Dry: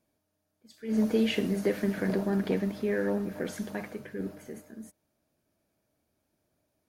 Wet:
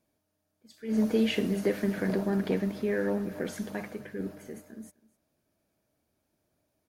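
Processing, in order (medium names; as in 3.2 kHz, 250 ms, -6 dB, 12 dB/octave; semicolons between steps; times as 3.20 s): delay 255 ms -22 dB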